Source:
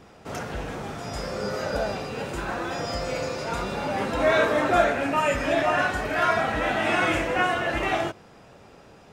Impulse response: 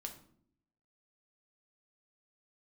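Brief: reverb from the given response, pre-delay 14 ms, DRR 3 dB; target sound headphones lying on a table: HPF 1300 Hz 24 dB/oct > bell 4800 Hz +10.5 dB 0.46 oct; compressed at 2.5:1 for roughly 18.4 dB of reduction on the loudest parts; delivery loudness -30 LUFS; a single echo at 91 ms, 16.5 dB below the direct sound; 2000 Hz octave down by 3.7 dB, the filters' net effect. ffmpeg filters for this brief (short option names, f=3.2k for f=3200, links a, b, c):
-filter_complex "[0:a]equalizer=f=2k:t=o:g=-4.5,acompressor=threshold=-44dB:ratio=2.5,aecho=1:1:91:0.15,asplit=2[a][b];[1:a]atrim=start_sample=2205,adelay=14[c];[b][c]afir=irnorm=-1:irlink=0,volume=0dB[d];[a][d]amix=inputs=2:normalize=0,highpass=f=1.3k:w=0.5412,highpass=f=1.3k:w=1.3066,equalizer=f=4.8k:t=o:w=0.46:g=10.5,volume=12dB"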